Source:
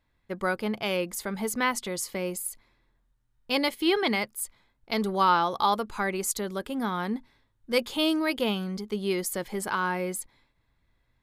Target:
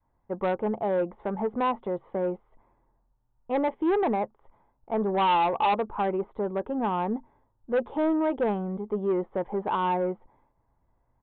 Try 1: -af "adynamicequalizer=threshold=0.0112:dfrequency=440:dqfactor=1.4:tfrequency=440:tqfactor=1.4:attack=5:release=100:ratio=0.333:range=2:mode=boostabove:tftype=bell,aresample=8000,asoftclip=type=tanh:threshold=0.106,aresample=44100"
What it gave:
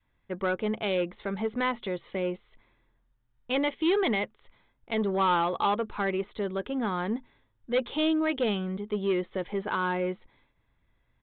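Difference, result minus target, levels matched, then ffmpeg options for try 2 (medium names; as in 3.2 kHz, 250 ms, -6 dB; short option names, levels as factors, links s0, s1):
1 kHz band -3.0 dB
-af "adynamicequalizer=threshold=0.0112:dfrequency=440:dqfactor=1.4:tfrequency=440:tqfactor=1.4:attack=5:release=100:ratio=0.333:range=2:mode=boostabove:tftype=bell,lowpass=f=870:t=q:w=2.6,aresample=8000,asoftclip=type=tanh:threshold=0.106,aresample=44100"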